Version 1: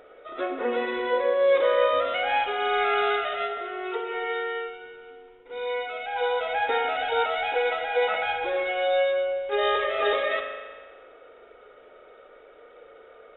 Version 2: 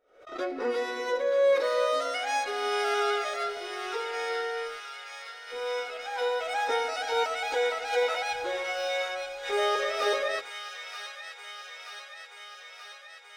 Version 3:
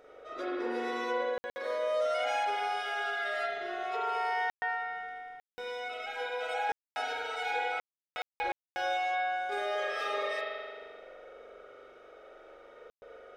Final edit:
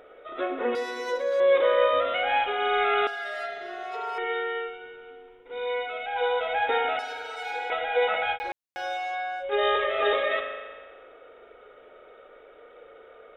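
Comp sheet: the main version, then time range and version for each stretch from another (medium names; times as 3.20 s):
1
0.75–1.40 s: from 2
3.07–4.18 s: from 3
6.99–7.70 s: from 3
8.36–9.42 s: from 3, crossfade 0.06 s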